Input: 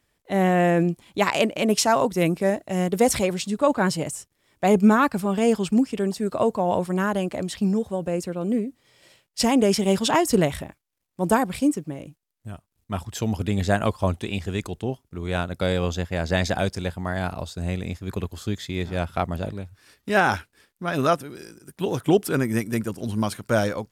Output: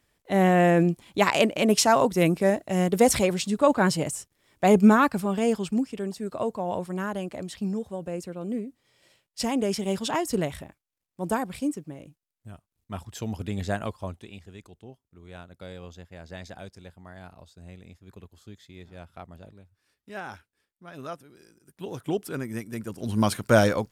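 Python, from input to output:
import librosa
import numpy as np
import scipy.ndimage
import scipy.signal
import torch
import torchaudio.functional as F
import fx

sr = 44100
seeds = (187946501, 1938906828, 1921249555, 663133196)

y = fx.gain(x, sr, db=fx.line((4.87, 0.0), (5.95, -7.0), (13.71, -7.0), (14.51, -18.0), (20.91, -18.0), (22.02, -9.5), (22.76, -9.5), (23.27, 3.0)))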